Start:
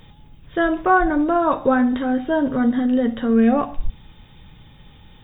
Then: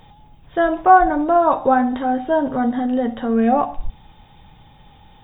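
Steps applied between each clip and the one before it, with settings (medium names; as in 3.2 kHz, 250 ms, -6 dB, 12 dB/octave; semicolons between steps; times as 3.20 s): peaking EQ 790 Hz +11.5 dB 0.68 oct; trim -2.5 dB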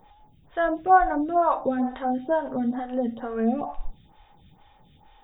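lamp-driven phase shifter 2.2 Hz; trim -4.5 dB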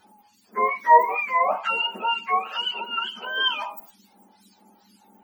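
spectrum inverted on a logarithmic axis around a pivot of 840 Hz; trim +3 dB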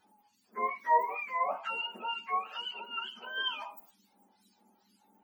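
flange 0.76 Hz, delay 6.4 ms, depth 2.2 ms, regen +70%; trim -6.5 dB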